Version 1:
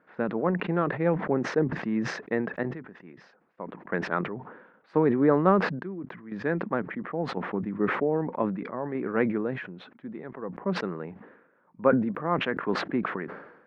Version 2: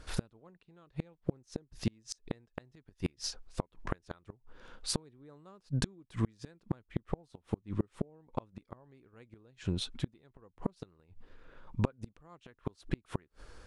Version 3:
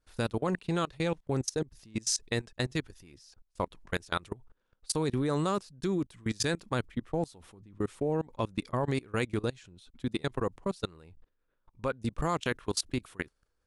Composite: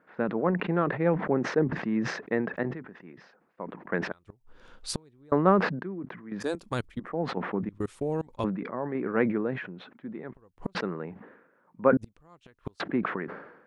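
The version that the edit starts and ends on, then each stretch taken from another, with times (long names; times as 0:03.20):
1
0:04.12–0:05.32: punch in from 2
0:06.50–0:07.05: punch in from 3, crossfade 0.24 s
0:07.69–0:08.44: punch in from 3
0:10.34–0:10.75: punch in from 2
0:11.97–0:12.80: punch in from 2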